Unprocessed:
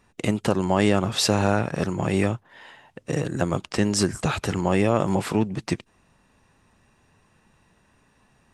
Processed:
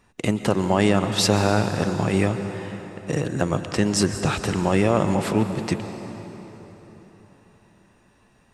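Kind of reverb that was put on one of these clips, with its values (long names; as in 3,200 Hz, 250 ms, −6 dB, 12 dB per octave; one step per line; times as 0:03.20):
dense smooth reverb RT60 4.3 s, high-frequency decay 0.7×, pre-delay 110 ms, DRR 8.5 dB
level +1 dB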